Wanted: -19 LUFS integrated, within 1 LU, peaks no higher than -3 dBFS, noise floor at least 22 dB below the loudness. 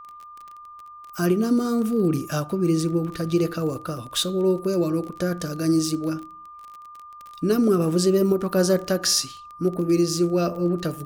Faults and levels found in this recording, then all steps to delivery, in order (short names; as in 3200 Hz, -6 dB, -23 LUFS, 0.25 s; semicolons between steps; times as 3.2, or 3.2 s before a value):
ticks 25/s; steady tone 1200 Hz; tone level -40 dBFS; loudness -23.0 LUFS; peak -8.0 dBFS; loudness target -19.0 LUFS
-> de-click; notch 1200 Hz, Q 30; gain +4 dB